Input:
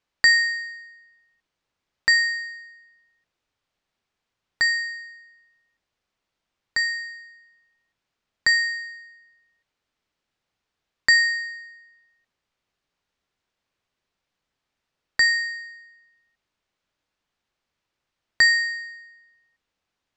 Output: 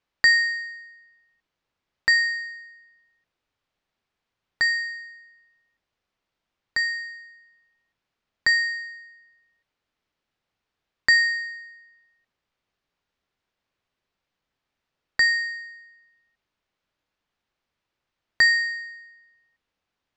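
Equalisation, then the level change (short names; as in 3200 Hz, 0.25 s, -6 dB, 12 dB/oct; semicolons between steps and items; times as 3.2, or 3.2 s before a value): air absorption 64 m; 0.0 dB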